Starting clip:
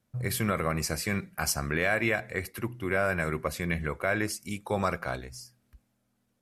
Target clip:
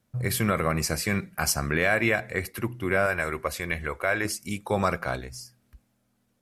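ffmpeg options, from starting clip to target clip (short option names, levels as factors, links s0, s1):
-filter_complex "[0:a]asettb=1/sr,asplit=3[s0][s1][s2];[s0]atrim=end=3.064[s3];[s1]atrim=start=3.06:end=4.25,asetpts=PTS-STARTPTS,afade=t=in:d=0.004:c=qsin,afade=t=out:st=1.186:d=0.004:c=qsin,equalizer=f=170:t=o:w=1.7:g=-10[s4];[s2]atrim=start=4.246[s5];[s3][s4]acrossfade=d=0.004:c1=hsin:c2=qsin[s6];[s6][s5]acrossfade=d=0.004:c1=qsin:c2=hsin,volume=1.5"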